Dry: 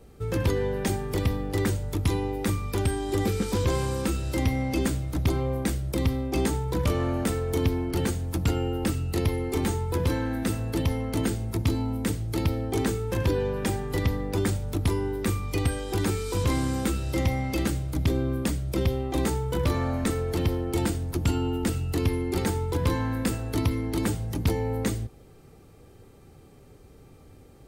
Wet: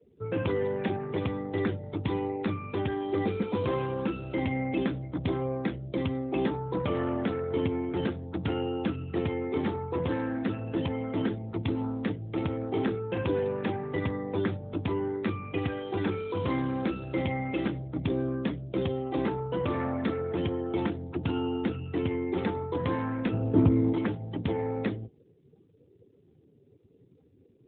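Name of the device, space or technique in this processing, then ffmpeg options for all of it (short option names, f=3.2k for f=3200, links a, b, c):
mobile call with aggressive noise cancelling: -filter_complex "[0:a]asplit=3[a][b][c];[a]afade=t=out:st=23.32:d=0.02[d];[b]tiltshelf=f=1.1k:g=9.5,afade=t=in:st=23.32:d=0.02,afade=t=out:st=23.92:d=0.02[e];[c]afade=t=in:st=23.92:d=0.02[f];[d][e][f]amix=inputs=3:normalize=0,highpass=f=170:p=1,afftdn=nr=34:nf=-46" -ar 8000 -c:a libopencore_amrnb -b:a 12200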